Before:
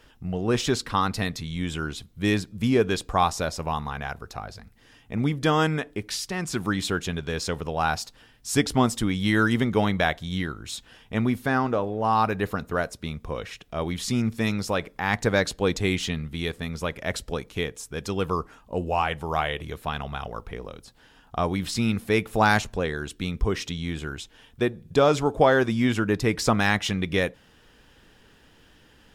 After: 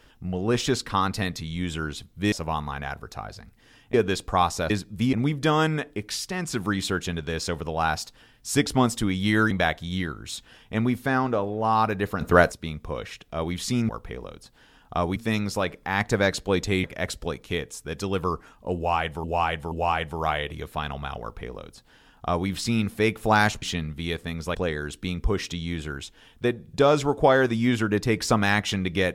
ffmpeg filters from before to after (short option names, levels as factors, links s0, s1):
-filter_complex "[0:a]asplit=15[s0][s1][s2][s3][s4][s5][s6][s7][s8][s9][s10][s11][s12][s13][s14];[s0]atrim=end=2.322[s15];[s1]atrim=start=3.508:end=5.132[s16];[s2]atrim=start=2.748:end=3.512[s17];[s3]atrim=start=2.318:end=2.752[s18];[s4]atrim=start=5.128:end=9.512[s19];[s5]atrim=start=9.908:end=12.612[s20];[s6]atrim=start=12.608:end=12.922,asetpts=PTS-STARTPTS,volume=2.99[s21];[s7]atrim=start=12.918:end=14.292[s22];[s8]atrim=start=20.308:end=21.582[s23];[s9]atrim=start=14.288:end=15.972[s24];[s10]atrim=start=16.898:end=19.302[s25];[s11]atrim=start=18.818:end=19.302[s26];[s12]atrim=start=18.818:end=22.722[s27];[s13]atrim=start=15.968:end=16.902[s28];[s14]atrim=start=22.718[s29];[s15][s16]acrossfade=d=0.004:c1=hsin:c2=hsin[s30];[s30][s17]acrossfade=d=0.004:c1=hsin:c2=hsin[s31];[s31][s18]acrossfade=d=0.004:c1=hsin:c2=hsin[s32];[s32][s19]acrossfade=d=0.004:c1=hsin:c2=hsin[s33];[s33][s20]acrossfade=d=0.004:c1=hsin:c2=hsin[s34];[s34][s21]acrossfade=d=0.004:c1=hsin:c2=hsin[s35];[s35][s22]acrossfade=d=0.004:c1=hsin:c2=hsin[s36];[s36][s23]acrossfade=d=0.004:c1=hsin:c2=hsin[s37];[s37][s24]acrossfade=d=0.004:c1=hsin:c2=hsin[s38];[s38][s25]acrossfade=d=0.004:c1=hsin:c2=hsin[s39];[s39][s26]acrossfade=d=0.004:c1=hsin:c2=hsin[s40];[s40][s27]acrossfade=d=0.004:c1=hsin:c2=hsin[s41];[s41][s28]acrossfade=d=0.004:c1=hsin:c2=hsin[s42];[s42][s29]acrossfade=d=0.004:c1=hsin:c2=hsin"